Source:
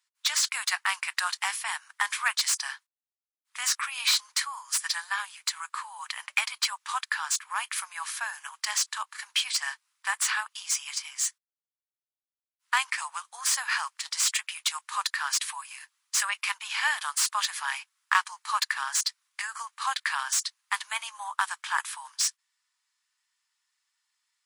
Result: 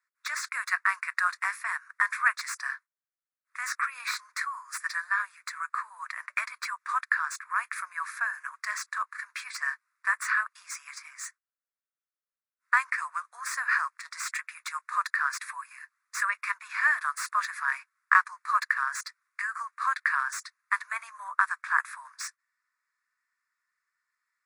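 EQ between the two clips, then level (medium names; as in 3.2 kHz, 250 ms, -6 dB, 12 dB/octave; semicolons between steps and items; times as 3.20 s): three-band isolator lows -15 dB, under 500 Hz, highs -18 dB, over 2.6 kHz; bass shelf 460 Hz -12 dB; static phaser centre 830 Hz, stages 6; +7.0 dB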